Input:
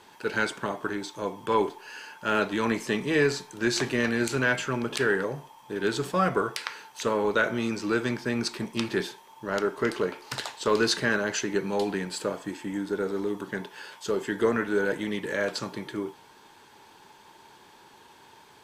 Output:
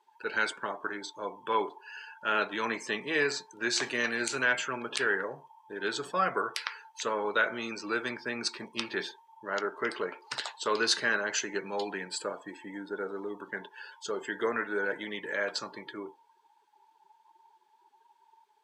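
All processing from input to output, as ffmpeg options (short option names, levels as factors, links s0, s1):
-filter_complex "[0:a]asettb=1/sr,asplit=3[s0][s1][s2];[s0]atrim=end=3.824[s3];[s1]atrim=start=3.82:end=4.45,asetpts=PTS-STARTPTS,afade=t=in:d=0.004:c=qsin,afade=t=out:st=0.626:d=0.004:c=qsin,highshelf=f=7300:g=7.5,acrossover=split=9100[s4][s5];[s5]acompressor=threshold=0.00355:ratio=4:attack=1:release=60[s6];[s4][s6]amix=inputs=2:normalize=0[s7];[s2]atrim=start=4.446[s8];[s3][s7]acrossfade=d=0.004:c1=hsin:c2=qsin[s9];[s9][s8]acrossfade=d=0.004:c1=qsin:c2=hsin,afftdn=nr=22:nf=-43,highpass=f=860:p=1"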